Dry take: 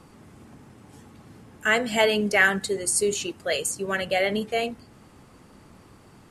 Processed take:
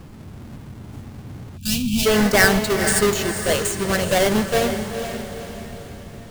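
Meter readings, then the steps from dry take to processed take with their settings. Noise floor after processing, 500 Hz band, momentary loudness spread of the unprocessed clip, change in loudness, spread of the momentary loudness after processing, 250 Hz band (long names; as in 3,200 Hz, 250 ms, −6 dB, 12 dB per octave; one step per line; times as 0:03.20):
−40 dBFS, +5.0 dB, 8 LU, +4.5 dB, 22 LU, +9.5 dB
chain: each half-wave held at its own peak
low-shelf EQ 170 Hz +11.5 dB
on a send: feedback delay with all-pass diffusion 476 ms, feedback 48%, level −8 dB
on the sum: gain on a spectral selection 0:01.57–0:02.06, 270–2,300 Hz −25 dB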